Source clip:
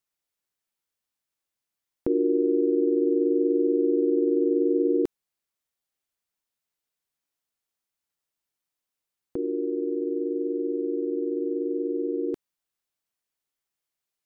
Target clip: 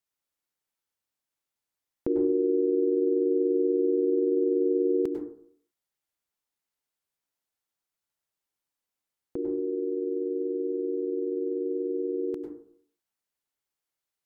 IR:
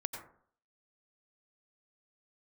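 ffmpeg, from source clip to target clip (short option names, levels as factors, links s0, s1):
-filter_complex "[1:a]atrim=start_sample=2205,asetrate=40572,aresample=44100[s0];[0:a][s0]afir=irnorm=-1:irlink=0,volume=0.794"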